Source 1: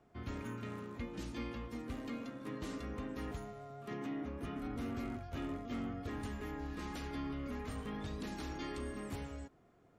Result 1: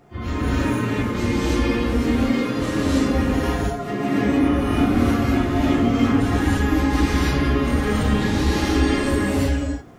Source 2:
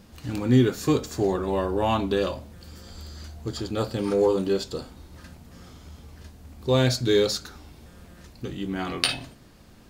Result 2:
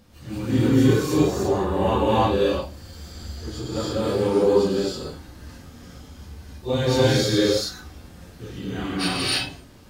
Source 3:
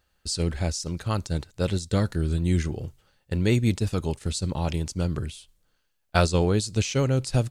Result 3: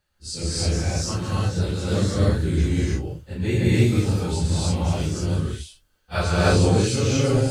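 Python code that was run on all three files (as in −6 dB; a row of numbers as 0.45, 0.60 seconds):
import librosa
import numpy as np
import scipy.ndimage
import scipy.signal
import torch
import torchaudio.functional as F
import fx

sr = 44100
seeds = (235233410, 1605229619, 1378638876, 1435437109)

y = fx.phase_scramble(x, sr, seeds[0], window_ms=100)
y = fx.rev_gated(y, sr, seeds[1], gate_ms=340, shape='rising', drr_db=-6.5)
y = y * 10.0 ** (-6 / 20.0) / np.max(np.abs(y))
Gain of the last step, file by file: +15.0, −4.0, −3.5 decibels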